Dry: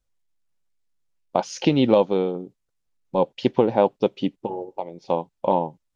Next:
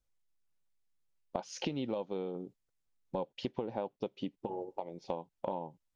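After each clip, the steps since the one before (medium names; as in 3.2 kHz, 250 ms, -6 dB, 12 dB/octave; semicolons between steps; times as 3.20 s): compression 6:1, threshold -28 dBFS, peak gain reduction 15.5 dB; trim -5.5 dB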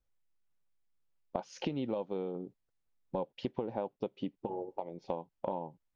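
treble shelf 3.9 kHz -11 dB; trim +1 dB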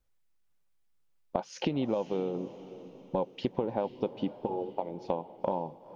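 echo that smears into a reverb 495 ms, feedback 45%, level -15 dB; trim +5 dB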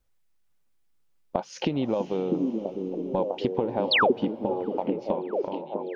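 fade out at the end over 1.12 s; painted sound fall, 3.91–4.12 s, 330–4800 Hz -24 dBFS; repeats whose band climbs or falls 650 ms, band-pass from 270 Hz, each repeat 0.7 oct, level 0 dB; trim +3.5 dB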